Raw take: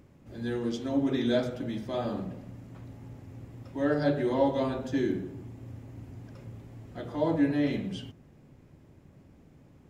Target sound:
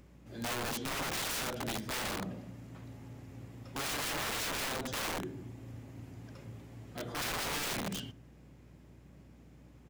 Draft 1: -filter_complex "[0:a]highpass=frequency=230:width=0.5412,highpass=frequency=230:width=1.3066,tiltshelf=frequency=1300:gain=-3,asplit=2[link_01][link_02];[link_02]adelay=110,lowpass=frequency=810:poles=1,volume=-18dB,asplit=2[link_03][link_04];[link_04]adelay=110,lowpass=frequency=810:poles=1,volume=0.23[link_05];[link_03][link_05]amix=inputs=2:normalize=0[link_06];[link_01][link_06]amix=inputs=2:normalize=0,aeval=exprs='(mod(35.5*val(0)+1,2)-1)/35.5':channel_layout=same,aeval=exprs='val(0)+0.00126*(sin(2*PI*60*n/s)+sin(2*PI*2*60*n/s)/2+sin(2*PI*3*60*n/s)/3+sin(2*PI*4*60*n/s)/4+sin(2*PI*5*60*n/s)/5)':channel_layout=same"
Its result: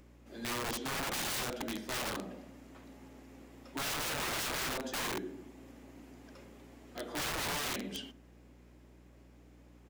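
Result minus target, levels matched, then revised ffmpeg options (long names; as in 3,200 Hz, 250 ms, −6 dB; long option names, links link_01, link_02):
125 Hz band −4.5 dB
-filter_complex "[0:a]highpass=frequency=90:width=0.5412,highpass=frequency=90:width=1.3066,tiltshelf=frequency=1300:gain=-3,asplit=2[link_01][link_02];[link_02]adelay=110,lowpass=frequency=810:poles=1,volume=-18dB,asplit=2[link_03][link_04];[link_04]adelay=110,lowpass=frequency=810:poles=1,volume=0.23[link_05];[link_03][link_05]amix=inputs=2:normalize=0[link_06];[link_01][link_06]amix=inputs=2:normalize=0,aeval=exprs='(mod(35.5*val(0)+1,2)-1)/35.5':channel_layout=same,aeval=exprs='val(0)+0.00126*(sin(2*PI*60*n/s)+sin(2*PI*2*60*n/s)/2+sin(2*PI*3*60*n/s)/3+sin(2*PI*4*60*n/s)/4+sin(2*PI*5*60*n/s)/5)':channel_layout=same"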